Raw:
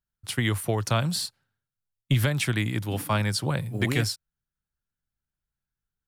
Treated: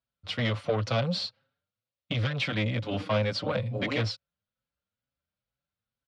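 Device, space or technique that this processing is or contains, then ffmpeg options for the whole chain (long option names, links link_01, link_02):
barber-pole flanger into a guitar amplifier: -filter_complex "[0:a]asplit=2[link_01][link_02];[link_02]adelay=5.7,afreqshift=2.2[link_03];[link_01][link_03]amix=inputs=2:normalize=1,asoftclip=type=tanh:threshold=-27.5dB,highpass=100,equalizer=frequency=150:width_type=q:width=4:gain=-7,equalizer=frequency=370:width_type=q:width=4:gain=-10,equalizer=frequency=540:width_type=q:width=4:gain=10,equalizer=frequency=880:width_type=q:width=4:gain=-4,equalizer=frequency=1700:width_type=q:width=4:gain=-6,lowpass=frequency=4400:width=0.5412,lowpass=frequency=4400:width=1.3066,volume=6.5dB"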